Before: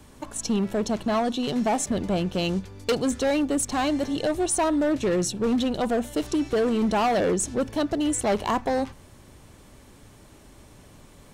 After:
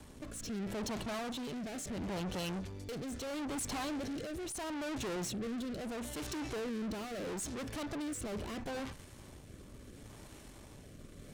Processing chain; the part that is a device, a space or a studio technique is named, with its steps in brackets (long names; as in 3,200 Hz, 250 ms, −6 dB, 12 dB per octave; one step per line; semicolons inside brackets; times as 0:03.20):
overdriven rotary cabinet (tube saturation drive 39 dB, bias 0.65; rotating-speaker cabinet horn 0.75 Hz)
level +3 dB